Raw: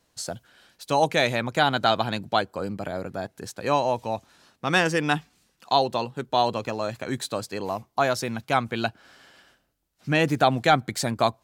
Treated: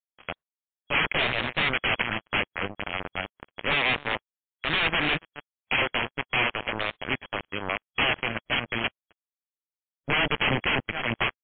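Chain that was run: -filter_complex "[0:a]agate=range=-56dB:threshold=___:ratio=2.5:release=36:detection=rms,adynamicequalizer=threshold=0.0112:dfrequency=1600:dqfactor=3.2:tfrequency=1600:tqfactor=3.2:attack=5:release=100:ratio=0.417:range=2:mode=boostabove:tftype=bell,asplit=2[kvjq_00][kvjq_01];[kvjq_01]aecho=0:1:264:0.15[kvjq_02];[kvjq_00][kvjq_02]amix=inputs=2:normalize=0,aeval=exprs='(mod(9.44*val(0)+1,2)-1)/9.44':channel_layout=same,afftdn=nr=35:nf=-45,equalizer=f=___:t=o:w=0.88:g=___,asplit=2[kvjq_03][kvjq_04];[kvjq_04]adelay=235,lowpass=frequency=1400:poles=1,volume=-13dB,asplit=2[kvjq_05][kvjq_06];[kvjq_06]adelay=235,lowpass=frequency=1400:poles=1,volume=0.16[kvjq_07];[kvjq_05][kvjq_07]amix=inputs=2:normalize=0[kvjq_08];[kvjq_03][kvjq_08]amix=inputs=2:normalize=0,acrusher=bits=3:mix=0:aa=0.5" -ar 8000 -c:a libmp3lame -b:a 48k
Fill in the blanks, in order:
-50dB, 2400, 8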